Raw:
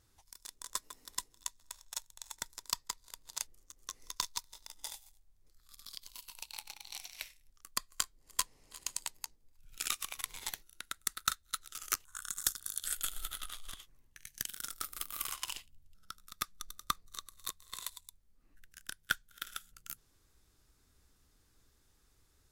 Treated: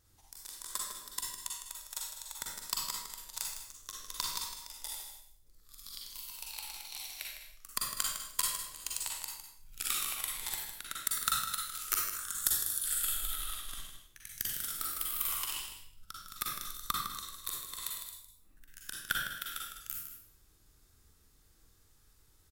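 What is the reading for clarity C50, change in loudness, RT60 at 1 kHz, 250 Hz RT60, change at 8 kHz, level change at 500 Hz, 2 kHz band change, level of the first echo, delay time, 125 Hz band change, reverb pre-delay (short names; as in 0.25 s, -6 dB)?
0.0 dB, +4.0 dB, 0.65 s, 0.80 s, +3.5 dB, +2.0 dB, +2.0 dB, -8.5 dB, 0.156 s, +4.5 dB, 38 ms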